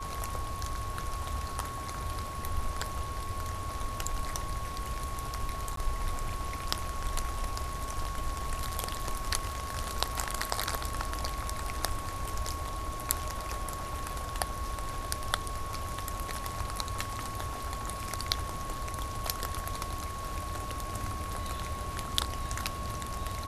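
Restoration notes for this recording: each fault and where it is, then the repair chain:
tone 1100 Hz -39 dBFS
5.76–5.77 gap 13 ms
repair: notch 1100 Hz, Q 30; interpolate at 5.76, 13 ms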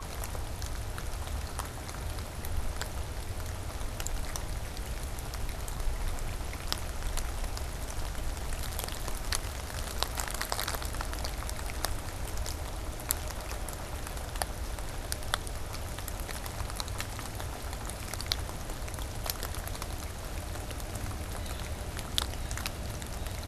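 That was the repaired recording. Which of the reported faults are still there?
none

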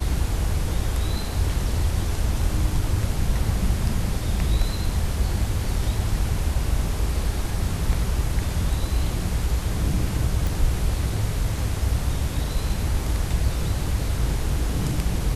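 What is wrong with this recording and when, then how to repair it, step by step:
10.47 pop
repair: de-click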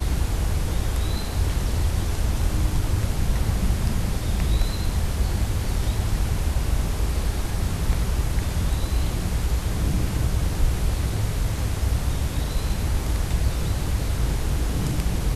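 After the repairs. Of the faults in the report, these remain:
none

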